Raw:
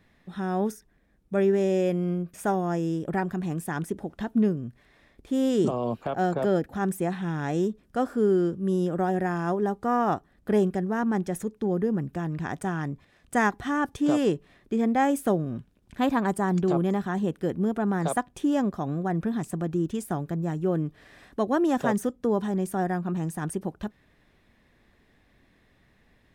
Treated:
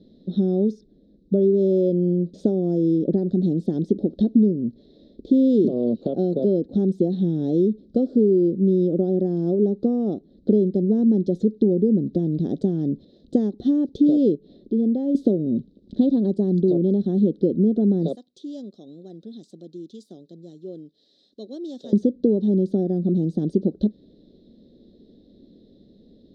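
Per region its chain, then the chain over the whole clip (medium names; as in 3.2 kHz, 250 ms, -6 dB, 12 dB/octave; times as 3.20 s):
14.35–15.15 s: distance through air 55 m + compression 1.5:1, threshold -53 dBFS
18.15–21.93 s: high-pass 73 Hz + pre-emphasis filter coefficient 0.97
whole clip: treble shelf 8.8 kHz -10.5 dB; compression 6:1, threshold -30 dBFS; FFT filter 120 Hz 0 dB, 210 Hz +14 dB, 370 Hz +13 dB, 550 Hz +9 dB, 960 Hz -23 dB, 1.7 kHz -26 dB, 2.5 kHz -25 dB, 3.9 kHz +10 dB, 11 kHz -29 dB; trim +2.5 dB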